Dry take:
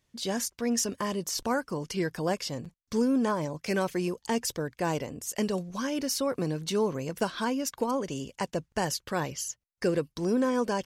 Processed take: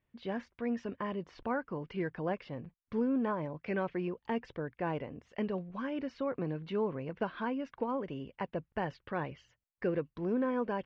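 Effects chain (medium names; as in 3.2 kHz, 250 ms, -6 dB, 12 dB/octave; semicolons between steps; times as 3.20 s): inverse Chebyshev low-pass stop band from 12 kHz, stop band 80 dB; trim -5.5 dB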